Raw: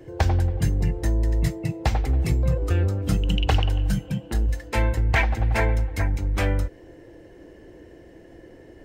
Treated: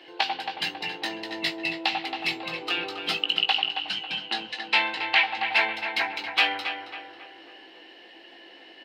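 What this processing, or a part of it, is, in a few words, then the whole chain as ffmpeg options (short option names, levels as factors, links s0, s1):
laptop speaker: -filter_complex "[0:a]asettb=1/sr,asplit=3[s0][s1][s2];[s0]atrim=end=3.604[s3];[s1]atrim=start=3.6:end=5.53,asetpts=PTS-STARTPTS,afade=t=in:d=0.004:c=qsin,afade=t=out:st=1.926:d=0.004:c=qsin,lowpass=7500[s4];[s2]atrim=start=5.526[s5];[s3][s4]acrossfade=d=0.004:c1=hsin:c2=qsin[s6];[s6][s5]acrossfade=d=0.004:c1=qsin:c2=hsin,highpass=f=360:w=0.5412,highpass=f=360:w=1.3066,firequalizer=gain_entry='entry(170,0);entry(460,-16);entry(980,-4);entry(4200,10);entry(6500,-13)':delay=0.05:min_phase=1,equalizer=f=780:t=o:w=0.34:g=11,equalizer=f=2800:t=o:w=0.47:g=10,alimiter=limit=0.2:level=0:latency=1:release=491,asplit=2[s7][s8];[s8]adelay=18,volume=0.447[s9];[s7][s9]amix=inputs=2:normalize=0,asplit=2[s10][s11];[s11]adelay=273,lowpass=f=2500:p=1,volume=0.447,asplit=2[s12][s13];[s13]adelay=273,lowpass=f=2500:p=1,volume=0.5,asplit=2[s14][s15];[s15]adelay=273,lowpass=f=2500:p=1,volume=0.5,asplit=2[s16][s17];[s17]adelay=273,lowpass=f=2500:p=1,volume=0.5,asplit=2[s18][s19];[s19]adelay=273,lowpass=f=2500:p=1,volume=0.5,asplit=2[s20][s21];[s21]adelay=273,lowpass=f=2500:p=1,volume=0.5[s22];[s10][s12][s14][s16][s18][s20][s22]amix=inputs=7:normalize=0,volume=1.68"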